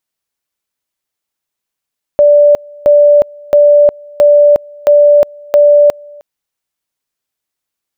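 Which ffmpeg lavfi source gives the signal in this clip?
ffmpeg -f lavfi -i "aevalsrc='pow(10,(-2.5-27.5*gte(mod(t,0.67),0.36))/20)*sin(2*PI*585*t)':duration=4.02:sample_rate=44100" out.wav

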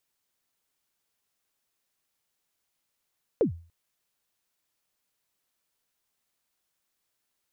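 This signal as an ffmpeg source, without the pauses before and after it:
ffmpeg -f lavfi -i "aevalsrc='0.158*pow(10,-3*t/0.39)*sin(2*PI*(530*0.109/log(84/530)*(exp(log(84/530)*min(t,0.109)/0.109)-1)+84*max(t-0.109,0)))':duration=0.29:sample_rate=44100" out.wav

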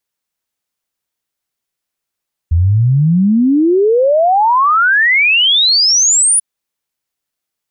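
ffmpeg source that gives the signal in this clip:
ffmpeg -f lavfi -i "aevalsrc='0.422*clip(min(t,3.89-t)/0.01,0,1)*sin(2*PI*79*3.89/log(10000/79)*(exp(log(10000/79)*t/3.89)-1))':duration=3.89:sample_rate=44100" out.wav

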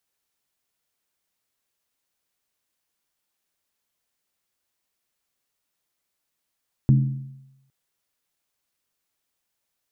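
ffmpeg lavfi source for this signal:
ffmpeg -f lavfi -i "aevalsrc='0.282*pow(10,-3*t/0.91)*sin(2*PI*135*t)+0.112*pow(10,-3*t/0.721)*sin(2*PI*215.2*t)+0.0447*pow(10,-3*t/0.623)*sin(2*PI*288.4*t)+0.0178*pow(10,-3*t/0.601)*sin(2*PI*310*t)+0.00708*pow(10,-3*t/0.559)*sin(2*PI*358.2*t)':duration=0.81:sample_rate=44100" out.wav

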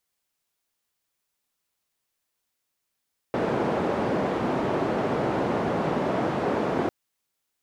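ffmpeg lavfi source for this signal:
ffmpeg -f lavfi -i "anoisesrc=color=white:duration=3.55:sample_rate=44100:seed=1,highpass=frequency=150,lowpass=frequency=600,volume=-4.3dB" out.wav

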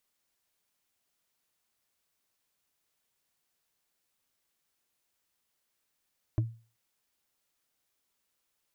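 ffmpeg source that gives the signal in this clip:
ffmpeg -f lavfi -i "aevalsrc='0.0891*pow(10,-3*t/0.36)*sin(2*PI*114*t)+0.0376*pow(10,-3*t/0.107)*sin(2*PI*314.3*t)+0.0158*pow(10,-3*t/0.048)*sin(2*PI*616.1*t)+0.00668*pow(10,-3*t/0.026)*sin(2*PI*1018.4*t)+0.00282*pow(10,-3*t/0.016)*sin(2*PI*1520.8*t)':duration=0.38:sample_rate=44100" out.wav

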